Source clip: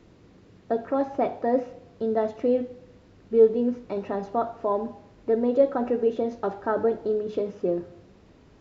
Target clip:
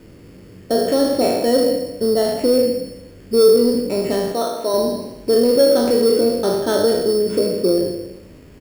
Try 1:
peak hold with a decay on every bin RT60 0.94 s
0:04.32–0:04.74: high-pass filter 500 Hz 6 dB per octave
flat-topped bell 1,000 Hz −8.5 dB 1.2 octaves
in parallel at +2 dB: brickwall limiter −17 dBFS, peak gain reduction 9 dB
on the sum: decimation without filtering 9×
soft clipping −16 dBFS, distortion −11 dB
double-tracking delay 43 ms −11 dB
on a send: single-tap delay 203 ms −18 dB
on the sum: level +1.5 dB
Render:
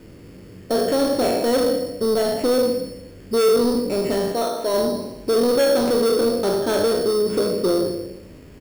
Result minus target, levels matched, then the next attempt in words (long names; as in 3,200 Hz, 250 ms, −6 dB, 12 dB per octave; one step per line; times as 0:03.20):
soft clipping: distortion +12 dB
peak hold with a decay on every bin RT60 0.94 s
0:04.32–0:04.74: high-pass filter 500 Hz 6 dB per octave
flat-topped bell 1,000 Hz −8.5 dB 1.2 octaves
in parallel at +2 dB: brickwall limiter −17 dBFS, peak gain reduction 9 dB
on the sum: decimation without filtering 9×
soft clipping −6.5 dBFS, distortion −23 dB
double-tracking delay 43 ms −11 dB
on a send: single-tap delay 203 ms −18 dB
on the sum: level +1.5 dB